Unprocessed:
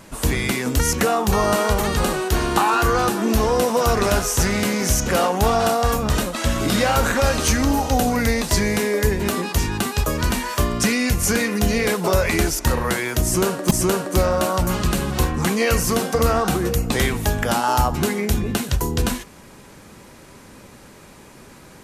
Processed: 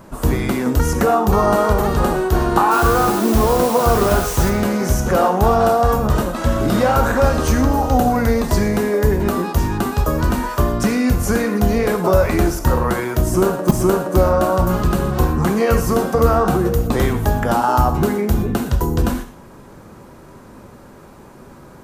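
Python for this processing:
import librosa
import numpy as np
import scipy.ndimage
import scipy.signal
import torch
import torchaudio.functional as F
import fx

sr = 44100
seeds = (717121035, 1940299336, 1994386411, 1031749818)

y = fx.band_shelf(x, sr, hz=4700.0, db=-10.5, octaves=3.0)
y = fx.dmg_noise_colour(y, sr, seeds[0], colour='white', level_db=-34.0, at=(2.7, 4.49), fade=0.02)
y = fx.rev_gated(y, sr, seeds[1], gate_ms=140, shape='flat', drr_db=7.5)
y = y * librosa.db_to_amplitude(3.5)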